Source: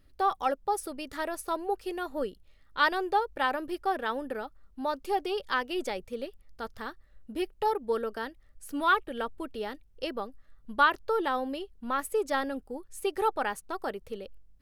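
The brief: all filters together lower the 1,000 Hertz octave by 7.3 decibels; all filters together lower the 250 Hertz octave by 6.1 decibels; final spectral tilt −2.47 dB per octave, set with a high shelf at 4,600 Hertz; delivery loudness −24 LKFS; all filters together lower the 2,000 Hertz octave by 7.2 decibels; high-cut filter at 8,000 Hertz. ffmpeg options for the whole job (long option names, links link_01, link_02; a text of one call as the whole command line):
ffmpeg -i in.wav -af "lowpass=8000,equalizer=frequency=250:width_type=o:gain=-8,equalizer=frequency=1000:width_type=o:gain=-7.5,equalizer=frequency=2000:width_type=o:gain=-7,highshelf=frequency=4600:gain=4,volume=13dB" out.wav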